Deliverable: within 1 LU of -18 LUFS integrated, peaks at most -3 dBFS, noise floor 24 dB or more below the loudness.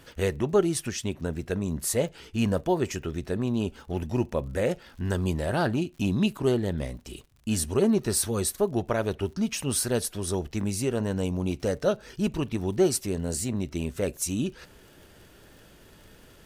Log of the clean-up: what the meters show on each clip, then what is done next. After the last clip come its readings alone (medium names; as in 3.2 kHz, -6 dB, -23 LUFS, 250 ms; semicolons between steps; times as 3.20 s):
tick rate 52 per s; loudness -28.0 LUFS; peak level -11.0 dBFS; loudness target -18.0 LUFS
-> de-click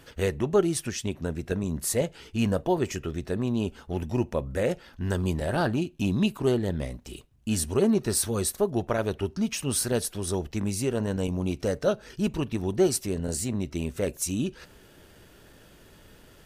tick rate 0 per s; loudness -28.0 LUFS; peak level -11.0 dBFS; loudness target -18.0 LUFS
-> trim +10 dB; peak limiter -3 dBFS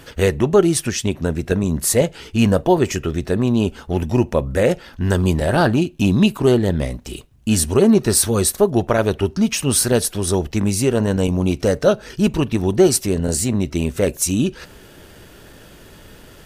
loudness -18.0 LUFS; peak level -3.0 dBFS; noise floor -44 dBFS